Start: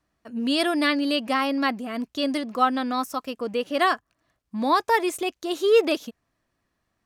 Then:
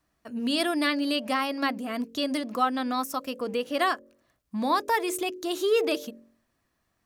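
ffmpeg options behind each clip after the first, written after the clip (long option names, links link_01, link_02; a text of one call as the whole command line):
ffmpeg -i in.wav -filter_complex "[0:a]highshelf=frequency=9500:gain=7.5,bandreject=frequency=45.66:width_type=h:width=4,bandreject=frequency=91.32:width_type=h:width=4,bandreject=frequency=136.98:width_type=h:width=4,bandreject=frequency=182.64:width_type=h:width=4,bandreject=frequency=228.3:width_type=h:width=4,bandreject=frequency=273.96:width_type=h:width=4,bandreject=frequency=319.62:width_type=h:width=4,bandreject=frequency=365.28:width_type=h:width=4,bandreject=frequency=410.94:width_type=h:width=4,bandreject=frequency=456.6:width_type=h:width=4,bandreject=frequency=502.26:width_type=h:width=4,bandreject=frequency=547.92:width_type=h:width=4,bandreject=frequency=593.58:width_type=h:width=4,asplit=2[link_01][link_02];[link_02]acompressor=threshold=-29dB:ratio=6,volume=2dB[link_03];[link_01][link_03]amix=inputs=2:normalize=0,volume=-6.5dB" out.wav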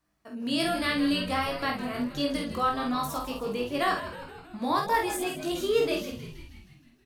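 ffmpeg -i in.wav -filter_complex "[0:a]flanger=delay=19.5:depth=2.3:speed=0.59,asplit=2[link_01][link_02];[link_02]adelay=49,volume=-4.5dB[link_03];[link_01][link_03]amix=inputs=2:normalize=0,asplit=8[link_04][link_05][link_06][link_07][link_08][link_09][link_10][link_11];[link_05]adelay=158,afreqshift=-100,volume=-12dB[link_12];[link_06]adelay=316,afreqshift=-200,volume=-16.2dB[link_13];[link_07]adelay=474,afreqshift=-300,volume=-20.3dB[link_14];[link_08]adelay=632,afreqshift=-400,volume=-24.5dB[link_15];[link_09]adelay=790,afreqshift=-500,volume=-28.6dB[link_16];[link_10]adelay=948,afreqshift=-600,volume=-32.8dB[link_17];[link_11]adelay=1106,afreqshift=-700,volume=-36.9dB[link_18];[link_04][link_12][link_13][link_14][link_15][link_16][link_17][link_18]amix=inputs=8:normalize=0" out.wav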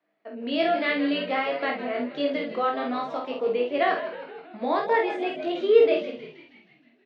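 ffmpeg -i in.wav -af "highpass=frequency=220:width=0.5412,highpass=frequency=220:width=1.3066,equalizer=frequency=450:width_type=q:width=4:gain=8,equalizer=frequency=650:width_type=q:width=4:gain=9,equalizer=frequency=1100:width_type=q:width=4:gain=-4,equalizer=frequency=2100:width_type=q:width=4:gain=6,lowpass=frequency=3600:width=0.5412,lowpass=frequency=3600:width=1.3066" out.wav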